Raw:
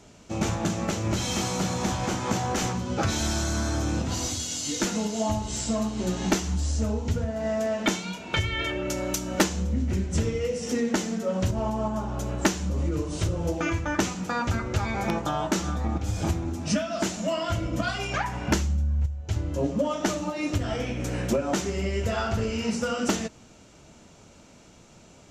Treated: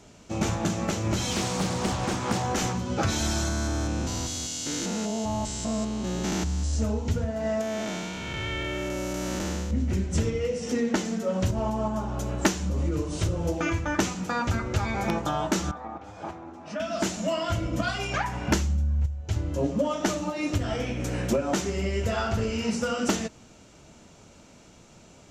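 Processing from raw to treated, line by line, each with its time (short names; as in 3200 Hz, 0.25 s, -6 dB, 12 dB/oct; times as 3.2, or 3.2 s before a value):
1.31–2.43 Doppler distortion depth 0.62 ms
3.48–6.74 stepped spectrum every 0.2 s
7.61–9.71 time blur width 0.363 s
10.3–11.05 high shelf 8000 Hz -8 dB
15.71–16.8 band-pass 920 Hz, Q 1.2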